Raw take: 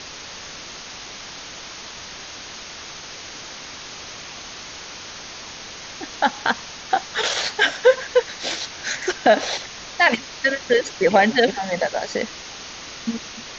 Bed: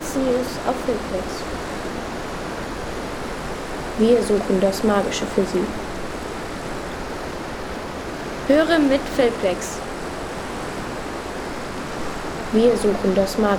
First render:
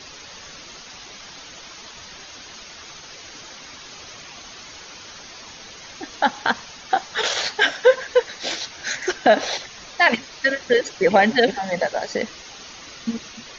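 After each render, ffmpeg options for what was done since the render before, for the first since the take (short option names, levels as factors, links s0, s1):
-af "afftdn=nr=8:nf=-37"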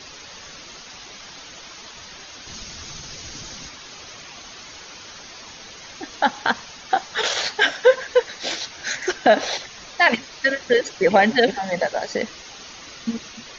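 -filter_complex "[0:a]asettb=1/sr,asplit=3[s0][s1][s2];[s0]atrim=end=2.474[s3];[s1]atrim=start=2.47:end=3.69,asetpts=PTS-STARTPTS,afade=t=in:d=0.004:c=qsin,afade=t=out:st=1.216:d=0.004:c=qsin,bass=f=250:g=13,treble=f=4000:g=6[s4];[s2]atrim=start=3.686[s5];[s3][s4]acrossfade=d=0.004:c1=hsin:c2=qsin[s6];[s6][s5]acrossfade=d=0.004:c1=qsin:c2=hsin"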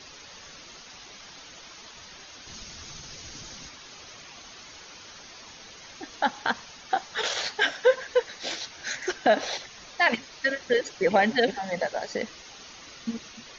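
-af "volume=0.501"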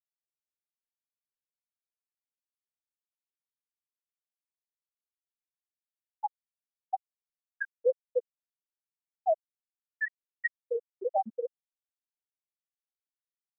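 -af "afftfilt=real='re*gte(hypot(re,im),0.794)':imag='im*gte(hypot(re,im),0.794)':win_size=1024:overlap=0.75,highpass=f=830:p=1"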